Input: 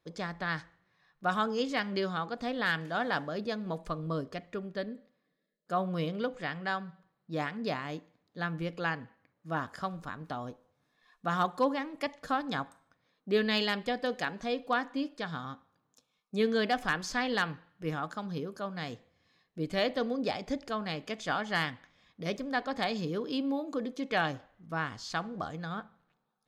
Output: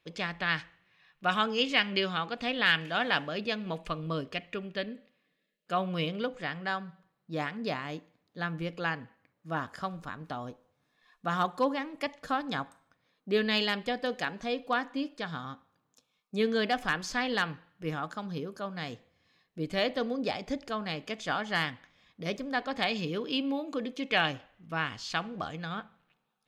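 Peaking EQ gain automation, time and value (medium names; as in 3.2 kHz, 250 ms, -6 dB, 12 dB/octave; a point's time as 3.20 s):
peaking EQ 2.7 kHz 0.79 oct
5.86 s +15 dB
6.36 s +3 dB
22.55 s +3 dB
22.98 s +11 dB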